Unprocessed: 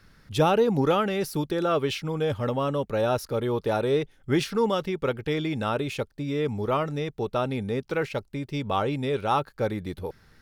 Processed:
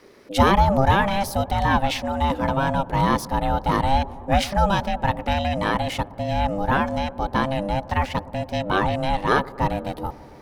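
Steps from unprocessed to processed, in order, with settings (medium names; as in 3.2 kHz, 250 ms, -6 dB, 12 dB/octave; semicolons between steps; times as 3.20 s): ring modulator 400 Hz; feedback echo behind a low-pass 119 ms, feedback 77%, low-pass 960 Hz, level -18.5 dB; trim +7.5 dB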